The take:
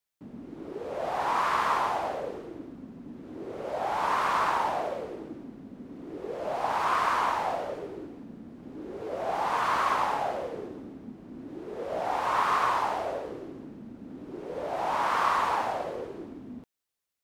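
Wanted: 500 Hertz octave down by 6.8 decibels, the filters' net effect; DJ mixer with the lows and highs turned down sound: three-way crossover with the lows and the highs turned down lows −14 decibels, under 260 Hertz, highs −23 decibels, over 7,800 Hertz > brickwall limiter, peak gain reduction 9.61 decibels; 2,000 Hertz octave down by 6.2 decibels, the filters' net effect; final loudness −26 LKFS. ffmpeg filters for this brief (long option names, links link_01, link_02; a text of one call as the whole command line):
ffmpeg -i in.wav -filter_complex "[0:a]acrossover=split=260 7800:gain=0.2 1 0.0708[link_01][link_02][link_03];[link_01][link_02][link_03]amix=inputs=3:normalize=0,equalizer=frequency=500:width_type=o:gain=-8,equalizer=frequency=2000:width_type=o:gain=-8,volume=10.5dB,alimiter=limit=-15.5dB:level=0:latency=1" out.wav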